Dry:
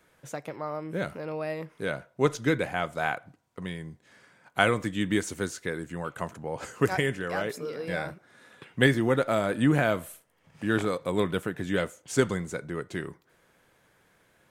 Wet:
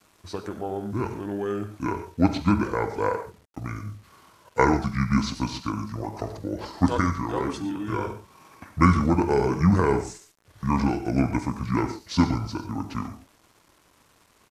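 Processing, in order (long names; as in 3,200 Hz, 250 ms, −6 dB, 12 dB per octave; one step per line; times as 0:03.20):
reverb whose tail is shaped and stops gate 160 ms flat, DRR 7 dB
bit-depth reduction 10 bits, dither none
pitch shifter −7.5 semitones
level +3 dB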